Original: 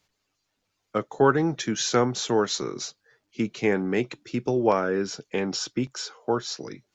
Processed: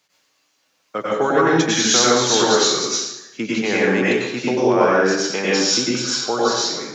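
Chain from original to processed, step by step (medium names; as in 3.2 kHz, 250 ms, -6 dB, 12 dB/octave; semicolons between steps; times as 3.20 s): high-pass 140 Hz 12 dB/octave; bass shelf 380 Hz -8.5 dB; peak limiter -17.5 dBFS, peak gain reduction 8 dB; plate-style reverb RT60 0.85 s, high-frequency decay 0.95×, pre-delay 85 ms, DRR -7 dB; trim +6 dB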